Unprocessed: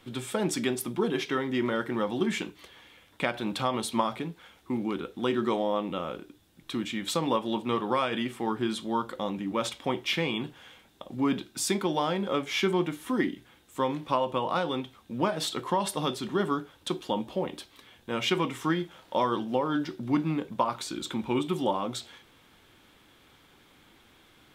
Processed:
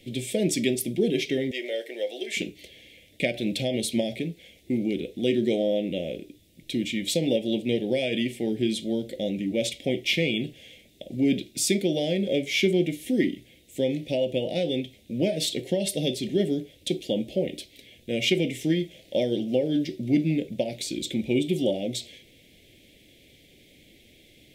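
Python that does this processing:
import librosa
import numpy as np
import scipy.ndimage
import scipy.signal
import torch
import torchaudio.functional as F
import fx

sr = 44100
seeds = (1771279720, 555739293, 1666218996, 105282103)

y = fx.highpass(x, sr, hz=480.0, slope=24, at=(1.51, 2.37))
y = scipy.signal.sosfilt(scipy.signal.cheby1(3, 1.0, [620.0, 2100.0], 'bandstop', fs=sr, output='sos'), y)
y = y * librosa.db_to_amplitude(5.0)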